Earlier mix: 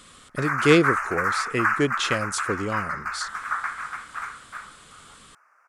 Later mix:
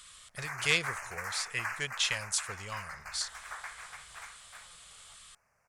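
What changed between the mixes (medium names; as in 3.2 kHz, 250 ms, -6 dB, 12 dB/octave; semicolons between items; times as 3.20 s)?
background: remove resonant high-pass 1.3 kHz, resonance Q 4.2; master: add amplifier tone stack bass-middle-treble 10-0-10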